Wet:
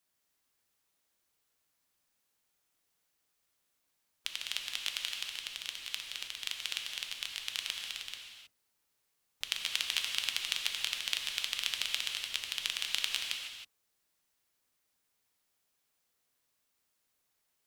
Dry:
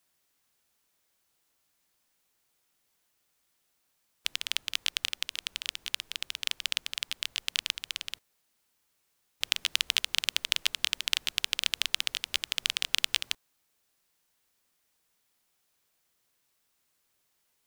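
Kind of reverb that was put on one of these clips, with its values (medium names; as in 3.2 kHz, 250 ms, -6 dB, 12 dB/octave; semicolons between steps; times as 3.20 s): gated-style reverb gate 340 ms flat, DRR 1.5 dB; trim -6.5 dB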